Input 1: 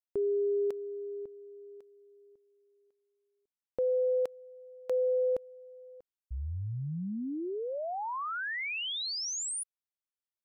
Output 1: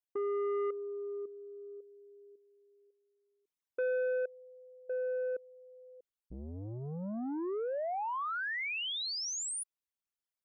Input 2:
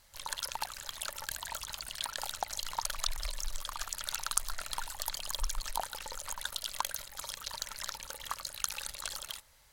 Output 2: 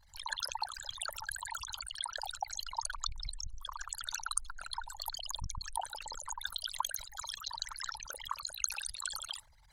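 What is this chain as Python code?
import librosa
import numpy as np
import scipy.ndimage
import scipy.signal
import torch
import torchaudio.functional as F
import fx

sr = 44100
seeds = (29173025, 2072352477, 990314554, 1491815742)

y = fx.envelope_sharpen(x, sr, power=3.0)
y = fx.rider(y, sr, range_db=4, speed_s=2.0)
y = fx.transformer_sat(y, sr, knee_hz=600.0)
y = y * 10.0 ** (-1.5 / 20.0)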